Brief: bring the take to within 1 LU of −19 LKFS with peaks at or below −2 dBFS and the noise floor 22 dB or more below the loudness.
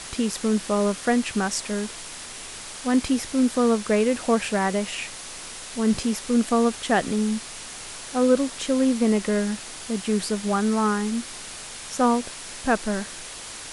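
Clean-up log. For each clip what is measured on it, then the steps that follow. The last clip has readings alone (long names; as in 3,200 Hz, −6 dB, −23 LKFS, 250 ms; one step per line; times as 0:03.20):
background noise floor −38 dBFS; target noise floor −46 dBFS; integrated loudness −24.0 LKFS; sample peak −7.5 dBFS; target loudness −19.0 LKFS
→ broadband denoise 8 dB, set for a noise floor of −38 dBFS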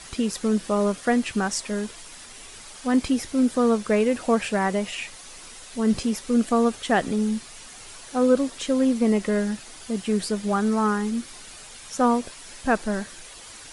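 background noise floor −43 dBFS; target noise floor −46 dBFS
→ broadband denoise 6 dB, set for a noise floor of −43 dBFS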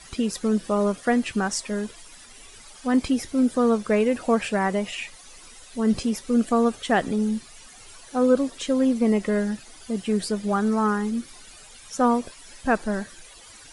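background noise floor −47 dBFS; integrated loudness −24.0 LKFS; sample peak −8.0 dBFS; target loudness −19.0 LKFS
→ level +5 dB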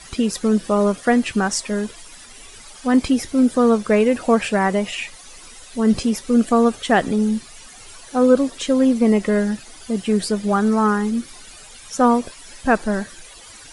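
integrated loudness −19.0 LKFS; sample peak −3.0 dBFS; background noise floor −42 dBFS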